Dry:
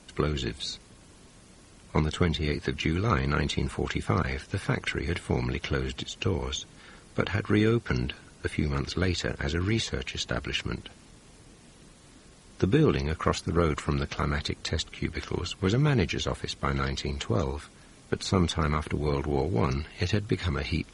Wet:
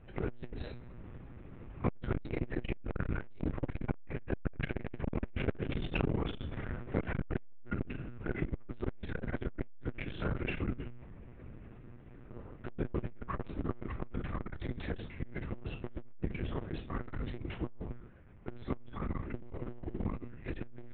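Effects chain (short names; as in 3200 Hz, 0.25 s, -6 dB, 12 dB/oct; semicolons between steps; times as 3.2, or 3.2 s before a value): Wiener smoothing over 9 samples; Doppler pass-by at 5.6, 19 m/s, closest 22 m; reverb RT60 0.40 s, pre-delay 3 ms, DRR -3 dB; spectral gain 12.3–12.55, 260–1400 Hz +11 dB; in parallel at -8 dB: sample-and-hold 38×; on the sum: monotone LPC vocoder at 8 kHz 120 Hz; LPF 2900 Hz 12 dB/oct; low shelf 460 Hz +7 dB; compressor 3:1, threshold -35 dBFS, peak gain reduction 19.5 dB; core saturation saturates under 300 Hz; gain +6 dB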